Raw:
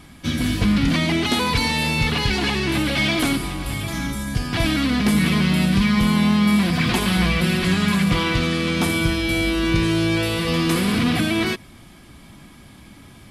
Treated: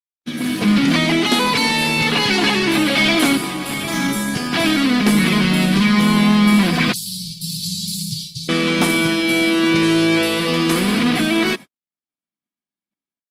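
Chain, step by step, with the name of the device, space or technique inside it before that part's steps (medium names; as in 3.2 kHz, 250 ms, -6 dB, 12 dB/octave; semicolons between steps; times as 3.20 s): 6.92–8.49 s: Chebyshev band-stop 140–4300 Hz, order 4; video call (high-pass 180 Hz 24 dB/octave; level rider gain up to 12.5 dB; gate -26 dBFS, range -59 dB; trim -2.5 dB; Opus 32 kbps 48 kHz)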